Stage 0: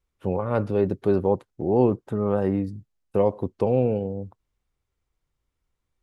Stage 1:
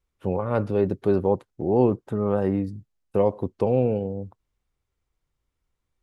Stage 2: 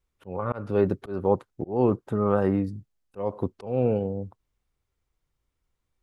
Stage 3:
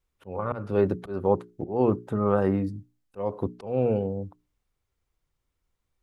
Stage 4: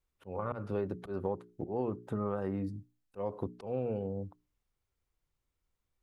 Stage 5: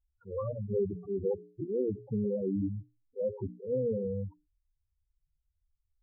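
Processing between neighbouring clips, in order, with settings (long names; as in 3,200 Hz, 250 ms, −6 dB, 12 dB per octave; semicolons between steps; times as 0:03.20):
no processing that can be heard
dynamic equaliser 1,300 Hz, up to +7 dB, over −45 dBFS, Q 2; volume swells 262 ms
mains-hum notches 60/120/180/240/300/360/420 Hz
downward compressor 6 to 1, threshold −25 dBFS, peak gain reduction 9.5 dB; level −5 dB
spectral peaks only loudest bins 4; level +6 dB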